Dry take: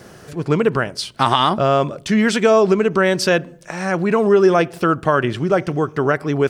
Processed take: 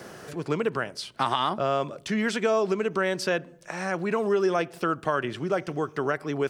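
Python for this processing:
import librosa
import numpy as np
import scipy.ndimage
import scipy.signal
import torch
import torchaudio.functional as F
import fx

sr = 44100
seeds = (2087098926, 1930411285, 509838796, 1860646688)

y = fx.low_shelf(x, sr, hz=200.0, db=-7.5)
y = fx.band_squash(y, sr, depth_pct=40)
y = F.gain(torch.from_numpy(y), -9.0).numpy()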